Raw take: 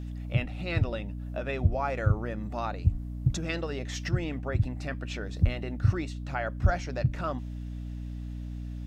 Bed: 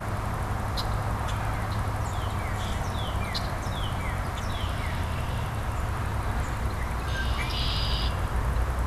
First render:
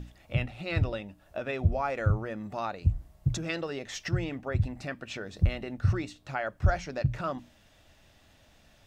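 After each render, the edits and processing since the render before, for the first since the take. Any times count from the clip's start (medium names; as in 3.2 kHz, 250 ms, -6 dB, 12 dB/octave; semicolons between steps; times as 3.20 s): hum notches 60/120/180/240/300 Hz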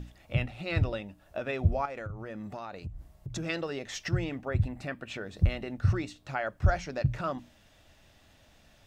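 1.85–3.36 s: compression 8:1, threshold -35 dBFS; 4.45–5.38 s: peaking EQ 5.5 kHz -5.5 dB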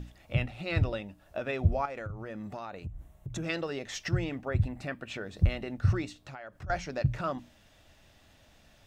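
2.70–3.44 s: peaking EQ 4.8 kHz -11.5 dB 0.34 oct; 6.17–6.70 s: compression 4:1, threshold -42 dBFS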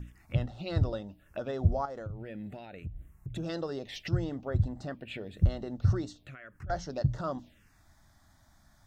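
wow and flutter 22 cents; touch-sensitive phaser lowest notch 430 Hz, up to 2.4 kHz, full sweep at -31 dBFS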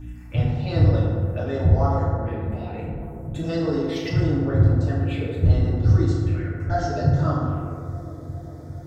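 feedback echo behind a low-pass 406 ms, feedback 77%, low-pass 580 Hz, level -12 dB; FDN reverb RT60 1.9 s, low-frequency decay 1.05×, high-frequency decay 0.4×, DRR -8.5 dB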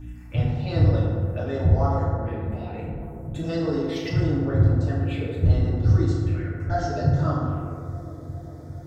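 trim -1.5 dB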